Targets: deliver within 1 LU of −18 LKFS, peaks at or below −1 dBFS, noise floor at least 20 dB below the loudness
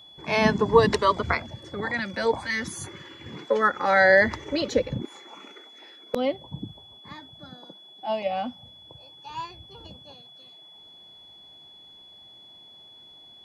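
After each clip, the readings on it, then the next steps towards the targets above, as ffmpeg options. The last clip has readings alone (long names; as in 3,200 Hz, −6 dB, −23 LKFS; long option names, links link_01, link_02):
interfering tone 3,400 Hz; level of the tone −47 dBFS; integrated loudness −24.0 LKFS; sample peak −4.5 dBFS; target loudness −18.0 LKFS
→ -af "bandreject=frequency=3400:width=30"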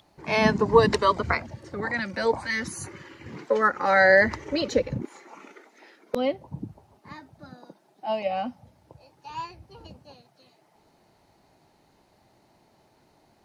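interfering tone none found; integrated loudness −24.0 LKFS; sample peak −4.5 dBFS; target loudness −18.0 LKFS
→ -af "volume=6dB,alimiter=limit=-1dB:level=0:latency=1"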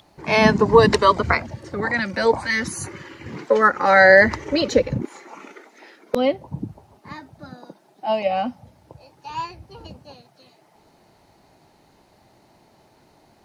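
integrated loudness −18.0 LKFS; sample peak −1.0 dBFS; background noise floor −57 dBFS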